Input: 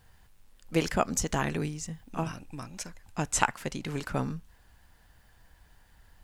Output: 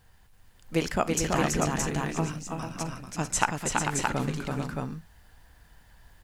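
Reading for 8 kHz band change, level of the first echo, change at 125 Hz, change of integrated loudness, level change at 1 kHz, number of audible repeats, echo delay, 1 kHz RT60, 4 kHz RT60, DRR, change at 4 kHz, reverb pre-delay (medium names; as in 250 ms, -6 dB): +3.5 dB, -19.5 dB, +3.5 dB, +3.0 dB, +3.5 dB, 5, 53 ms, no reverb, no reverb, no reverb, +3.5 dB, no reverb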